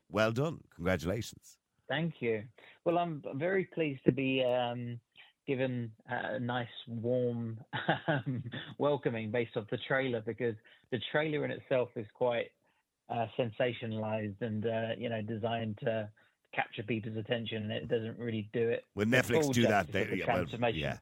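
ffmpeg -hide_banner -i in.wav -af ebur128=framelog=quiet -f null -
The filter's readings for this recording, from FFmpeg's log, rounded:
Integrated loudness:
  I:         -34.1 LUFS
  Threshold: -44.4 LUFS
Loudness range:
  LRA:         4.6 LU
  Threshold: -54.8 LUFS
  LRA low:   -36.6 LUFS
  LRA high:  -32.0 LUFS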